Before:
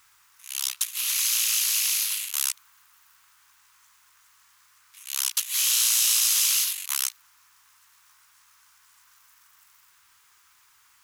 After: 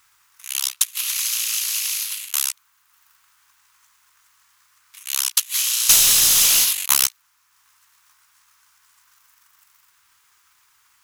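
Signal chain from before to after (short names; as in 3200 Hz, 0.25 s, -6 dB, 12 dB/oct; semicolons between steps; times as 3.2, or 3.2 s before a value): 5.89–7.07 sample leveller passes 3; transient shaper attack +9 dB, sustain -4 dB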